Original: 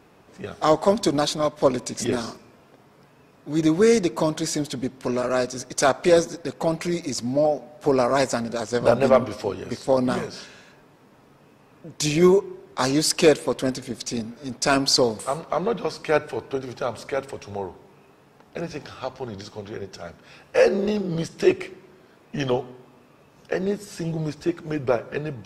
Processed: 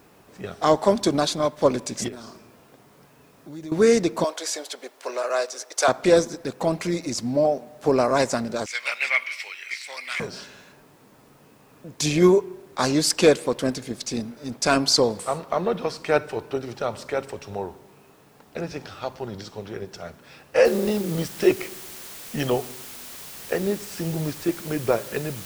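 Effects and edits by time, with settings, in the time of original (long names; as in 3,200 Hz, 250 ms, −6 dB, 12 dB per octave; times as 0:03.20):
0:02.08–0:03.72: downward compressor 3 to 1, threshold −39 dBFS
0:04.24–0:05.88: high-pass filter 480 Hz 24 dB per octave
0:08.66–0:10.20: high-pass with resonance 2,200 Hz, resonance Q 9.3
0:20.65: noise floor change −64 dB −40 dB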